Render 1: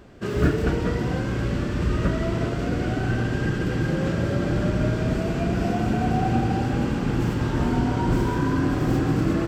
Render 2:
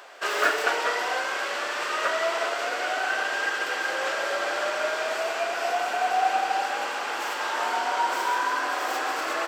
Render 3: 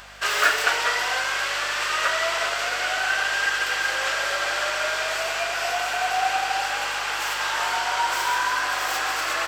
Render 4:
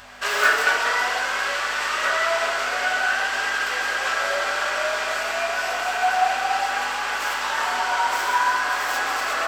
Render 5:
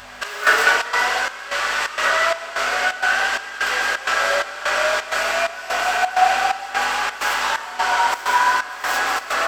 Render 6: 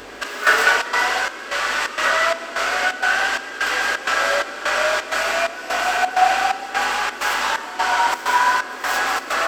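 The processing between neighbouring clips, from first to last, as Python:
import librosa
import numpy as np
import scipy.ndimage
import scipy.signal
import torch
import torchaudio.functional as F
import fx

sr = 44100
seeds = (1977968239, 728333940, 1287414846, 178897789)

y1 = scipy.signal.sosfilt(scipy.signal.butter(4, 660.0, 'highpass', fs=sr, output='sos'), x)
y1 = fx.rider(y1, sr, range_db=10, speed_s=2.0)
y1 = y1 * 10.0 ** (7.0 / 20.0)
y2 = fx.tilt_shelf(y1, sr, db=-7.5, hz=850.0)
y2 = fx.add_hum(y2, sr, base_hz=50, snr_db=29)
y3 = fx.rev_fdn(y2, sr, rt60_s=0.75, lf_ratio=1.25, hf_ratio=0.25, size_ms=71.0, drr_db=-1.0)
y3 = y3 * 10.0 ** (-2.0 / 20.0)
y4 = fx.step_gate(y3, sr, bpm=129, pattern='xx..xxx.x', floor_db=-12.0, edge_ms=4.5)
y4 = fx.rider(y4, sr, range_db=4, speed_s=2.0)
y4 = y4 * 10.0 ** (3.5 / 20.0)
y5 = fx.dmg_noise_band(y4, sr, seeds[0], low_hz=240.0, high_hz=610.0, level_db=-42.0)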